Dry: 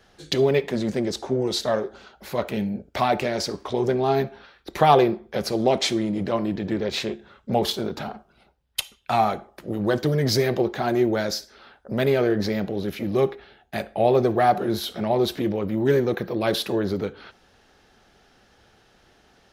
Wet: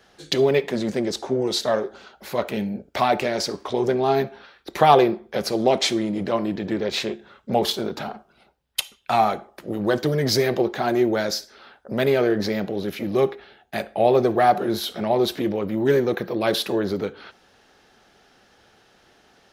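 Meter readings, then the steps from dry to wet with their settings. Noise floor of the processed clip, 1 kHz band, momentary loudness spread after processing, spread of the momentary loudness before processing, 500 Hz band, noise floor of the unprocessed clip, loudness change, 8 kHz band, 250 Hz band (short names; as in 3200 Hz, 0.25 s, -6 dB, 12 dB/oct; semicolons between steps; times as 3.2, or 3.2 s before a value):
-58 dBFS, +2.0 dB, 11 LU, 11 LU, +1.5 dB, -59 dBFS, +1.0 dB, +2.0 dB, +0.5 dB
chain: low shelf 110 Hz -10.5 dB; gain +2 dB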